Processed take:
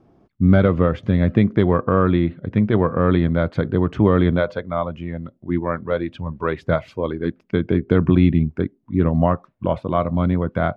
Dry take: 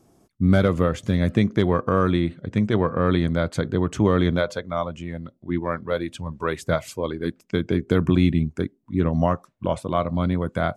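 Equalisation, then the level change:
high-frequency loss of the air 330 metres
+4.0 dB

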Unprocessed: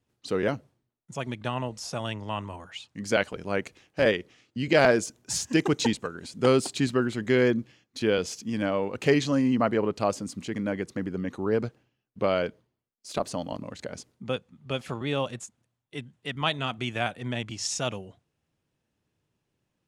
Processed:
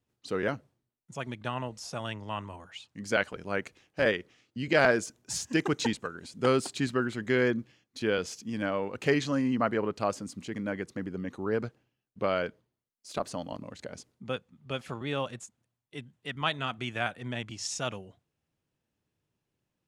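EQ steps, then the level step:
dynamic equaliser 1,500 Hz, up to +5 dB, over −41 dBFS, Q 1.4
−4.5 dB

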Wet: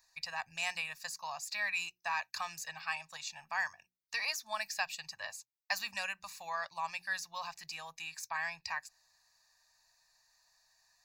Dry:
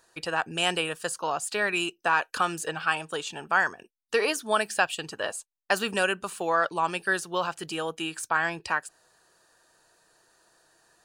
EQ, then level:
guitar amp tone stack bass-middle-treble 10-0-10
mains-hum notches 60/120/180/240/300/360 Hz
phaser with its sweep stopped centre 2,100 Hz, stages 8
0.0 dB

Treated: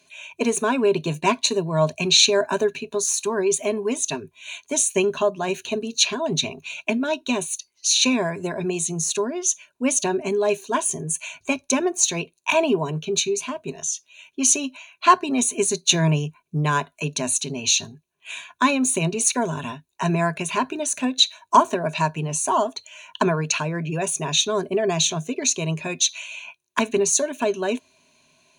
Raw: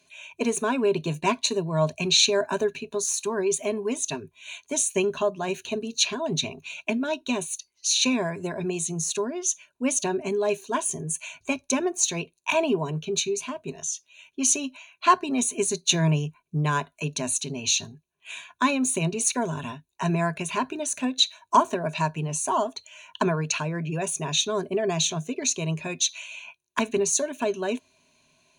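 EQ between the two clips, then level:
low-shelf EQ 86 Hz −7.5 dB
+4.0 dB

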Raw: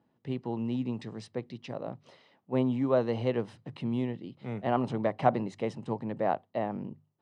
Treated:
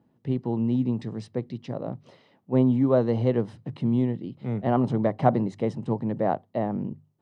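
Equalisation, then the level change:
low-shelf EQ 470 Hz +9.5 dB
dynamic equaliser 2,600 Hz, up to −6 dB, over −58 dBFS, Q 4.5
0.0 dB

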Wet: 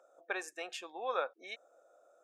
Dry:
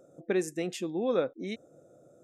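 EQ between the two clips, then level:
high-pass filter 890 Hz 24 dB per octave
Butterworth band-reject 2,000 Hz, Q 7.8
spectral tilt −4.5 dB per octave
+6.0 dB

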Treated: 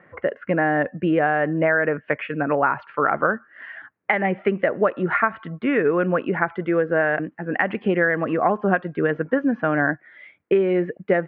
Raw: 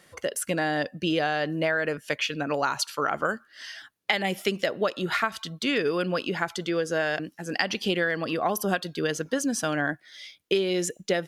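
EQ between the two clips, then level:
high-pass filter 79 Hz
Butterworth low-pass 2,100 Hz 36 dB per octave
+6.5 dB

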